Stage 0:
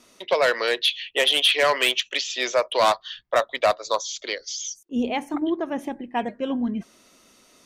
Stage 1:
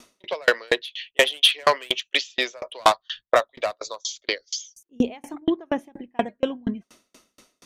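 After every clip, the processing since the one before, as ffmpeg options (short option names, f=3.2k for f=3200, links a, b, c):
-af "aeval=exprs='val(0)*pow(10,-37*if(lt(mod(4.2*n/s,1),2*abs(4.2)/1000),1-mod(4.2*n/s,1)/(2*abs(4.2)/1000),(mod(4.2*n/s,1)-2*abs(4.2)/1000)/(1-2*abs(4.2)/1000))/20)':c=same,volume=7.5dB"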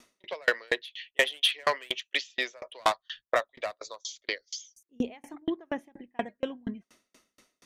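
-af "equalizer=f=1.9k:t=o:w=0.47:g=5.5,volume=-8.5dB"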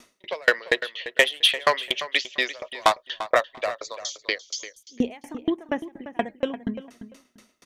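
-filter_complex "[0:a]asplit=2[a][b];[b]adelay=344,lowpass=f=4.3k:p=1,volume=-13dB,asplit=2[c][d];[d]adelay=344,lowpass=f=4.3k:p=1,volume=0.19[e];[a][c][e]amix=inputs=3:normalize=0,volume=6dB"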